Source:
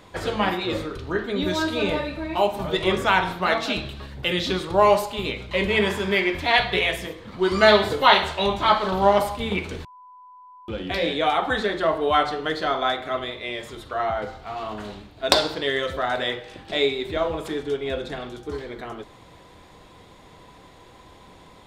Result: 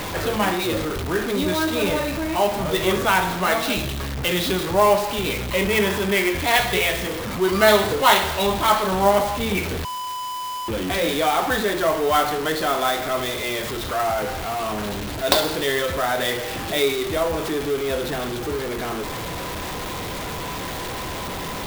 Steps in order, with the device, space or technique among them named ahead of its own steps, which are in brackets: early CD player with a faulty converter (zero-crossing step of -23 dBFS; clock jitter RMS 0.025 ms); gain -1 dB

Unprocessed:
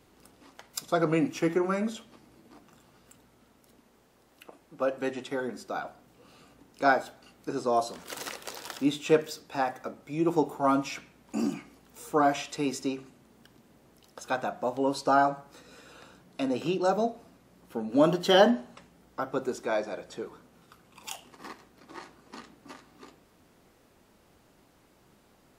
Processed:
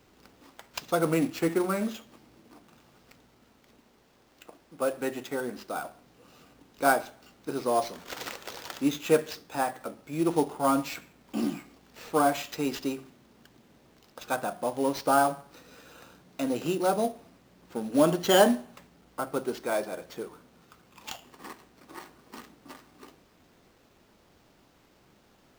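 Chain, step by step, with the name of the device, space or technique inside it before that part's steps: early companding sampler (sample-rate reducer 10000 Hz, jitter 0%; companded quantiser 6-bit)

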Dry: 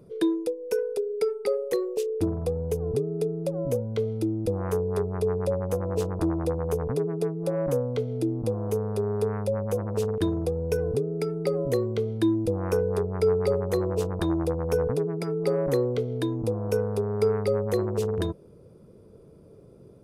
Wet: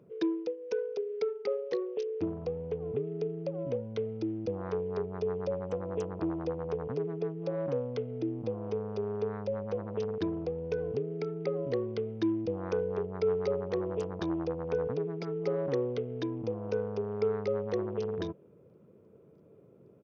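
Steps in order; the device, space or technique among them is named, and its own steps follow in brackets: Bluetooth headset (HPF 130 Hz 12 dB/oct; downsampling 16000 Hz; gain -6 dB; SBC 64 kbps 48000 Hz)

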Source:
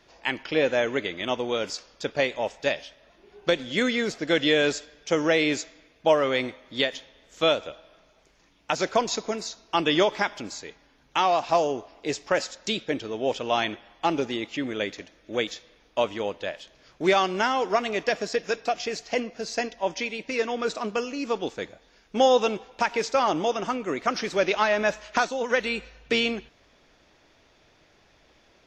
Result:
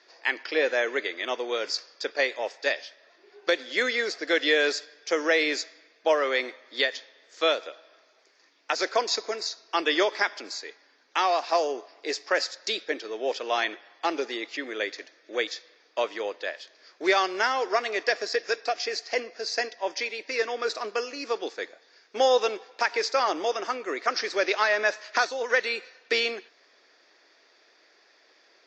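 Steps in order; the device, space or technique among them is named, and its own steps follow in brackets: phone speaker on a table (speaker cabinet 360–6800 Hz, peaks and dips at 590 Hz -3 dB, 870 Hz -4 dB, 1800 Hz +5 dB, 3000 Hz -5 dB, 4700 Hz +8 dB)

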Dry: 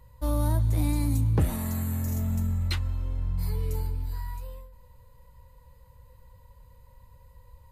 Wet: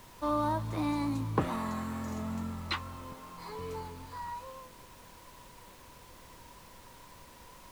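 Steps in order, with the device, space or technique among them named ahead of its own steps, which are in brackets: 3.12–3.59 HPF 280 Hz 12 dB/oct; horn gramophone (BPF 210–4400 Hz; bell 1100 Hz +11 dB 0.54 oct; wow and flutter 25 cents; pink noise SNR 17 dB)

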